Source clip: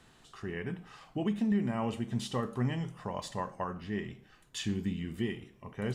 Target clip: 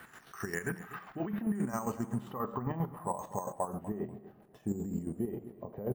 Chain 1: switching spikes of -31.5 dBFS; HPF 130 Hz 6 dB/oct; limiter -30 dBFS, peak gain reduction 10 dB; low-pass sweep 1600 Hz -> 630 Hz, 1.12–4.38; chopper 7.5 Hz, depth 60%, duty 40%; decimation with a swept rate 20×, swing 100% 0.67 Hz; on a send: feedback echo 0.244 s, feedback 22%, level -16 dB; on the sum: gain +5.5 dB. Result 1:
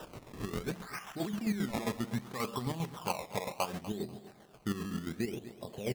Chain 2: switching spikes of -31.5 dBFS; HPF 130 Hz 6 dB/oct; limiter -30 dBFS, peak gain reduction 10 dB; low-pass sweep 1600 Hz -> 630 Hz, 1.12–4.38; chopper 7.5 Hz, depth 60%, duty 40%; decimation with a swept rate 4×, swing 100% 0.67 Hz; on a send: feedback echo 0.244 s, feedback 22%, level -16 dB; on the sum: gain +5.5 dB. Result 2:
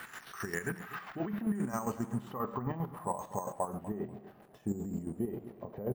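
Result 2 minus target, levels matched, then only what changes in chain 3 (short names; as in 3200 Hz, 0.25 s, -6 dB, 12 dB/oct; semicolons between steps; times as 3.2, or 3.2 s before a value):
switching spikes: distortion +9 dB
change: switching spikes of -41 dBFS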